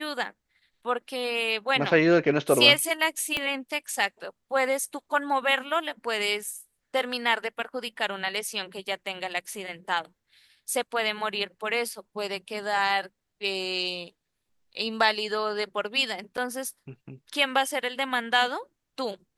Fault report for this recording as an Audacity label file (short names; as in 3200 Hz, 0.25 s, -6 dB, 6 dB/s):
3.370000	3.370000	pop -13 dBFS
16.370000	16.380000	gap 7.6 ms